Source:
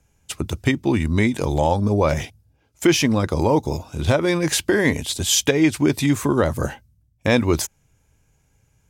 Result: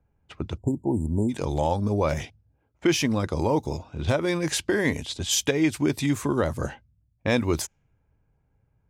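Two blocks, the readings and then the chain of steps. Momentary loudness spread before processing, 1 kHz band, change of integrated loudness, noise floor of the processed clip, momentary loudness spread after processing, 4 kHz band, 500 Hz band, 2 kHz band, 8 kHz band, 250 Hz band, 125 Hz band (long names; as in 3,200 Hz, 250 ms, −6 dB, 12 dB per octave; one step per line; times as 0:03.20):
10 LU, −5.5 dB, −5.5 dB, −70 dBFS, 10 LU, −6.0 dB, −5.5 dB, −6.0 dB, −6.0 dB, −5.5 dB, −5.5 dB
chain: time-frequency box erased 0:00.58–0:01.29, 990–6,900 Hz
low-pass that shuts in the quiet parts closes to 1,300 Hz, open at −15.5 dBFS
level −5.5 dB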